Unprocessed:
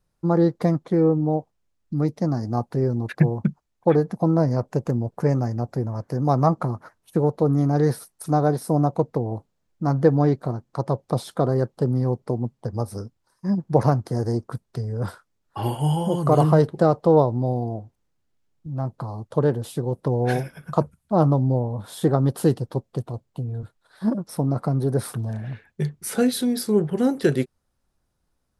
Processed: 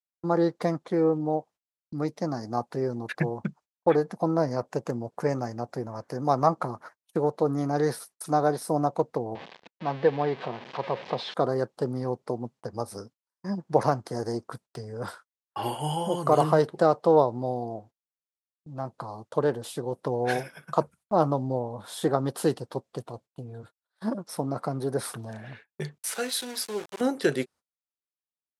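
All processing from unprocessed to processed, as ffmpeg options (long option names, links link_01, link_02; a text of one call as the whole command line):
ffmpeg -i in.wav -filter_complex "[0:a]asettb=1/sr,asplit=3[link_01][link_02][link_03];[link_01]atrim=end=9.354[link_04];[link_02]atrim=start=9.35:end=11.34,asetpts=PTS-STARTPTS,afade=type=in:duration=0.004:curve=qsin,afade=type=out:start_time=1.986:duration=0.004:curve=qsin,aeval=exprs='val(0)+0.5*0.0335*sgn(val(0))':channel_layout=same,highpass=170,equalizer=frequency=300:width_type=q:width=4:gain=-8,equalizer=frequency=620:width_type=q:width=4:gain=-3,equalizer=frequency=1300:width_type=q:width=4:gain=-5,lowpass=frequency=3900:width=0.5412,lowpass=frequency=3900:width=1.3066,bandreject=frequency=1400:width=15[link_05];[link_03]atrim=start=11.336[link_06];[link_04][link_05]acrossfade=duration=0.004:curve1=hsin:curve2=qsin[link_07];[link_07][link_06]acrossfade=duration=0.004:curve1=qsin:curve2=hsin,asettb=1/sr,asplit=3[link_08][link_09][link_10];[link_08]atrim=end=25.984[link_11];[link_09]atrim=start=25.98:end=27.01,asetpts=PTS-STARTPTS,afade=type=in:duration=0.004:curve=qsin,afade=type=out:start_time=1.026:duration=0.004:curve=qsin,equalizer=frequency=140:width=0.36:gain=-14.5,aeval=exprs='val(0)*gte(abs(val(0)),0.0168)':channel_layout=same[link_12];[link_10]atrim=start=27.006[link_13];[link_11][link_12]acrossfade=duration=0.004:curve1=hsin:curve2=qsin[link_14];[link_14][link_13]acrossfade=duration=0.004:curve1=qsin:curve2=hsin,highpass=frequency=580:poles=1,agate=range=-29dB:threshold=-50dB:ratio=16:detection=peak,lowpass=11000,volume=1dB" out.wav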